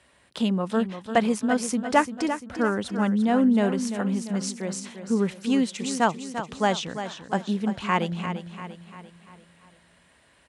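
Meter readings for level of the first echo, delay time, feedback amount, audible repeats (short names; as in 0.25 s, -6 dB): -10.0 dB, 0.344 s, 49%, 5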